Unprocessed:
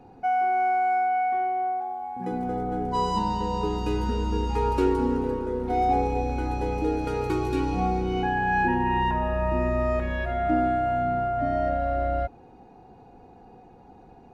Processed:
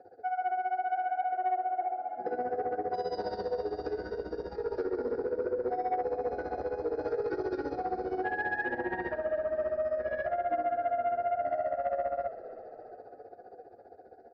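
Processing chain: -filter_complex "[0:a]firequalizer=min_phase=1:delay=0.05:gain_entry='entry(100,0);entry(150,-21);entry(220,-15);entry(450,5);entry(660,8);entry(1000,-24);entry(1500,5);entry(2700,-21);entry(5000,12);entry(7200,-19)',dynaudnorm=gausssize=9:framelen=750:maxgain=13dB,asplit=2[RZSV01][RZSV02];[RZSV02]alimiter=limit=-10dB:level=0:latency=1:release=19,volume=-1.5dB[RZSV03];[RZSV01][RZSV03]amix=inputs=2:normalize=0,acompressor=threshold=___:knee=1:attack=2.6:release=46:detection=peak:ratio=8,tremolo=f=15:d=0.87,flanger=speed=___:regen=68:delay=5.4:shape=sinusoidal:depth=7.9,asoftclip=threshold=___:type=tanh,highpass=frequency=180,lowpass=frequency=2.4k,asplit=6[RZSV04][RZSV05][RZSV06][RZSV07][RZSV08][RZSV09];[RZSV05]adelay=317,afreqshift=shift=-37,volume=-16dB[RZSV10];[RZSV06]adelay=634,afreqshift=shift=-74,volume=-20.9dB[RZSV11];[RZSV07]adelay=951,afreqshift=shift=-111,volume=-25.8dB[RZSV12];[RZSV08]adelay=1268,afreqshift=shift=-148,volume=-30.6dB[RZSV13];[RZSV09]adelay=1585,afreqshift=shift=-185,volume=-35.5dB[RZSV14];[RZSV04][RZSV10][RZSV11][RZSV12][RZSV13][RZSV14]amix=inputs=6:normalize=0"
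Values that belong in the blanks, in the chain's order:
-20dB, 0.67, -22dB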